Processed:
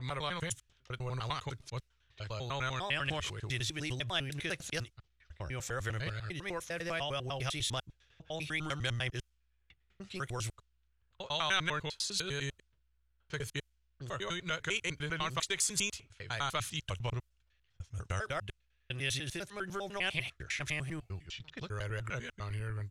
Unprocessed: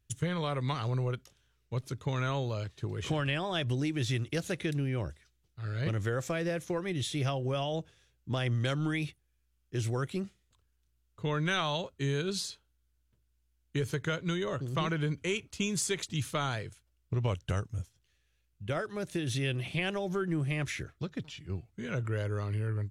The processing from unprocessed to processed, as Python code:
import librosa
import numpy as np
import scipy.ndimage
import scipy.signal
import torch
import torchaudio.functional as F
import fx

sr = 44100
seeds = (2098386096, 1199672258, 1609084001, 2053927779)

y = fx.block_reorder(x, sr, ms=100.0, group=7)
y = fx.env_lowpass(y, sr, base_hz=2300.0, full_db=-30.5)
y = fx.peak_eq(y, sr, hz=240.0, db=-14.0, octaves=2.7)
y = F.gain(torch.from_numpy(y), 2.5).numpy()